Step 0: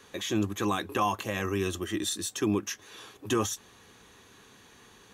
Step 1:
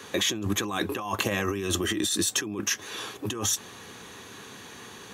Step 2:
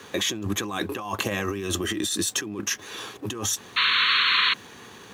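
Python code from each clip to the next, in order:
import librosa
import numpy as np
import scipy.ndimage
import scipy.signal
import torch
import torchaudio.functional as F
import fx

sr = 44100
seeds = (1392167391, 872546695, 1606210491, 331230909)

y1 = scipy.signal.sosfilt(scipy.signal.butter(2, 92.0, 'highpass', fs=sr, output='sos'), x)
y1 = fx.over_compress(y1, sr, threshold_db=-35.0, ratio=-1.0)
y1 = y1 * librosa.db_to_amplitude(6.5)
y2 = fx.backlash(y1, sr, play_db=-48.5)
y2 = fx.spec_paint(y2, sr, seeds[0], shape='noise', start_s=3.76, length_s=0.78, low_hz=990.0, high_hz=4400.0, level_db=-21.0)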